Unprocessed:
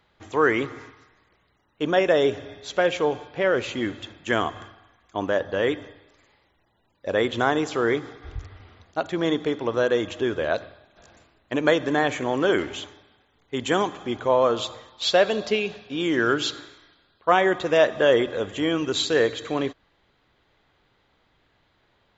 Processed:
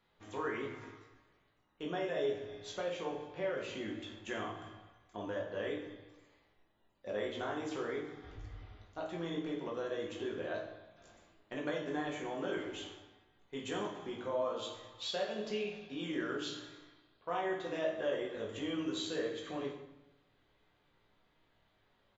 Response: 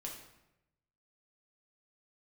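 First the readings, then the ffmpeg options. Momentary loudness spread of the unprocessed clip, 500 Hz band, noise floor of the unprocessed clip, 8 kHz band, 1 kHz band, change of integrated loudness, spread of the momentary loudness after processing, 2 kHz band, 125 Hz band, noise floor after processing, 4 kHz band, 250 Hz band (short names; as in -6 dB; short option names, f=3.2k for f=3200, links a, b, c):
13 LU, -15.5 dB, -66 dBFS, n/a, -16.5 dB, -15.5 dB, 14 LU, -17.0 dB, -14.0 dB, -73 dBFS, -14.5 dB, -14.0 dB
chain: -filter_complex "[0:a]acompressor=threshold=-33dB:ratio=2,asplit=2[a][b];[b]adelay=19,volume=-7dB[c];[a][c]amix=inputs=2:normalize=0[d];[1:a]atrim=start_sample=2205[e];[d][e]afir=irnorm=-1:irlink=0,volume=-7dB"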